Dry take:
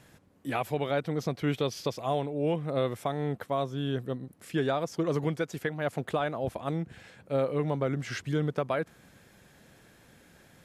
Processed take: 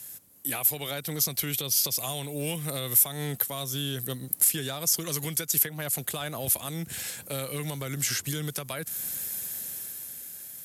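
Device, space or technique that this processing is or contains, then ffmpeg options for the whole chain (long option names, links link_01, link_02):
FM broadcast chain: -filter_complex "[0:a]asettb=1/sr,asplit=3[link_01][link_02][link_03];[link_01]atrim=end=2.294[link_04];[link_02]atrim=start=2.29:end=3.05,asetpts=PTS-STARTPTS,afade=type=in:duration=0.004:curve=qsin,afade=type=out:start_time=0.756:duration=0.004:curve=qsin,highshelf=frequency=9800:gain=6[link_05];[link_03]atrim=start=3.046[link_06];[link_04][link_05]acrossfade=duration=0.004:curve1=hsin:curve2=qsin[link_07];[link_07][link_06]acrossfade=duration=0.004:curve1=qsin:curve2=hsin,highpass=50,dynaudnorm=framelen=210:gausssize=11:maxgain=9.5dB,acrossover=split=170|1500[link_08][link_09][link_10];[link_08]acompressor=threshold=-28dB:ratio=4[link_11];[link_09]acompressor=threshold=-30dB:ratio=4[link_12];[link_10]acompressor=threshold=-36dB:ratio=4[link_13];[link_11][link_12][link_13]amix=inputs=3:normalize=0,aemphasis=mode=production:type=75fm,alimiter=limit=-20.5dB:level=0:latency=1:release=195,asoftclip=type=hard:threshold=-22dB,lowpass=frequency=15000:width=0.5412,lowpass=frequency=15000:width=1.3066,aemphasis=mode=production:type=75fm,volume=-3dB"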